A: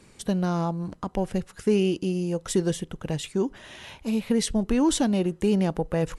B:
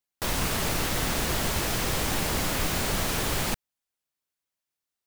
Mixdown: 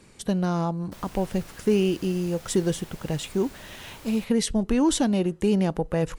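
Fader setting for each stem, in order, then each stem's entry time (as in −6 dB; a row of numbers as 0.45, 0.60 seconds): +0.5, −19.0 decibels; 0.00, 0.70 seconds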